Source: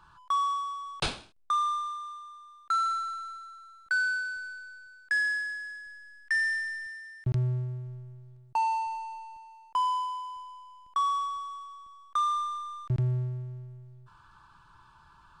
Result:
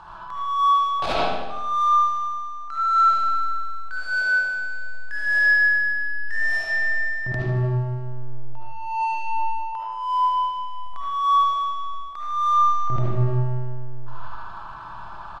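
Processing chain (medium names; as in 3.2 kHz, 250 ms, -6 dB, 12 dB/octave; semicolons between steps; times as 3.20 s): median filter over 5 samples; low-pass 7.7 kHz 12 dB/octave; peaking EQ 710 Hz +13.5 dB 0.92 oct; compressor with a negative ratio -28 dBFS, ratio -0.5; transient shaper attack -11 dB, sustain -7 dB; feedback delay 76 ms, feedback 60%, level -10 dB; reverberation RT60 0.90 s, pre-delay 30 ms, DRR -5.5 dB; trim +6.5 dB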